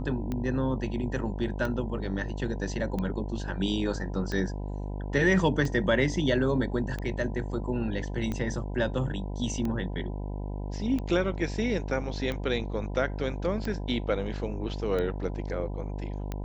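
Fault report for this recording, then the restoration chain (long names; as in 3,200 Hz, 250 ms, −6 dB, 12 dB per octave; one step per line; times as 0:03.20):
mains buzz 50 Hz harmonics 20 −34 dBFS
scratch tick 45 rpm −20 dBFS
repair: click removal
hum removal 50 Hz, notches 20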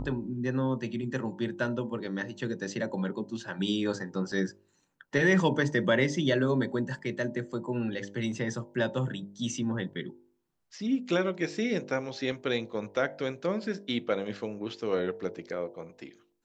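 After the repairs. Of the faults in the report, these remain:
none of them is left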